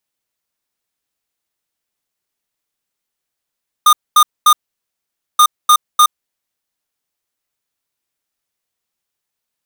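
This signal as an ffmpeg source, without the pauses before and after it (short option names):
-f lavfi -i "aevalsrc='0.422*(2*lt(mod(1220*t,1),0.5)-1)*clip(min(mod(mod(t,1.53),0.3),0.07-mod(mod(t,1.53),0.3))/0.005,0,1)*lt(mod(t,1.53),0.9)':d=3.06:s=44100"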